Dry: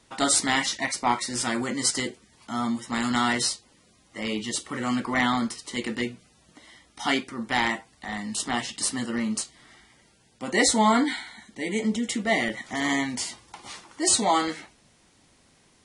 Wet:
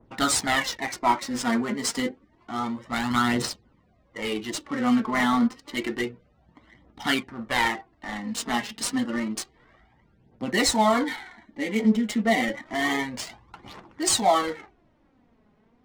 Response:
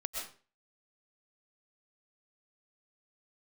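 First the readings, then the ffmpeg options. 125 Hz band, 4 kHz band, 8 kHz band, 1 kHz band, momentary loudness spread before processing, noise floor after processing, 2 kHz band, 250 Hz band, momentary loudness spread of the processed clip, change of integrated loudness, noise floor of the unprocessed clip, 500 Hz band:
+0.5 dB, −1.0 dB, −3.5 dB, +1.0 dB, 13 LU, −63 dBFS, 0.0 dB, +1.5 dB, 14 LU, 0.0 dB, −61 dBFS, +2.0 dB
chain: -af "aphaser=in_gain=1:out_gain=1:delay=4.9:decay=0.56:speed=0.29:type=triangular,adynamicsmooth=sensitivity=6.5:basefreq=1200,adynamicequalizer=threshold=0.0141:dfrequency=1800:dqfactor=0.7:tfrequency=1800:tqfactor=0.7:attack=5:release=100:ratio=0.375:range=3:mode=cutabove:tftype=highshelf"

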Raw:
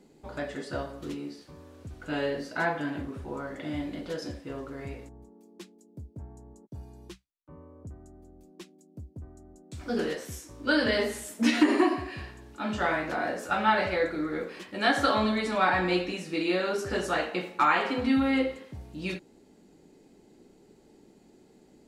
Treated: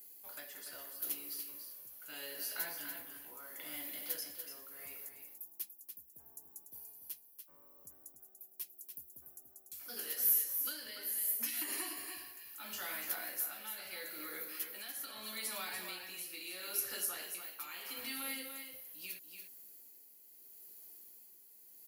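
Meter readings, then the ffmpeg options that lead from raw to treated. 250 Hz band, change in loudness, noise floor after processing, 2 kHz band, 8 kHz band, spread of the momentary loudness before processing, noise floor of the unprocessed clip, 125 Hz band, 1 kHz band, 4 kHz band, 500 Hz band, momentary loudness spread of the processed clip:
−27.0 dB, −11.0 dB, −61 dBFS, −15.5 dB, +5.5 dB, 22 LU, −59 dBFS, below −30 dB, −23.0 dB, −9.0 dB, −24.0 dB, 18 LU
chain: -filter_complex "[0:a]aderivative,bandreject=frequency=3700:width=13,acrossover=split=380|3000[link_01][link_02][link_03];[link_01]acompressor=threshold=-57dB:ratio=4[link_04];[link_02]acompressor=threshold=-53dB:ratio=4[link_05];[link_03]acompressor=threshold=-49dB:ratio=4[link_06];[link_04][link_05][link_06]amix=inputs=3:normalize=0,alimiter=level_in=14dB:limit=-24dB:level=0:latency=1:release=389,volume=-14dB,aexciter=amount=15:drive=5:freq=11000,tremolo=f=0.77:d=0.53,asplit=2[link_07][link_08];[link_08]aecho=0:1:290:0.422[link_09];[link_07][link_09]amix=inputs=2:normalize=0,volume=6.5dB"

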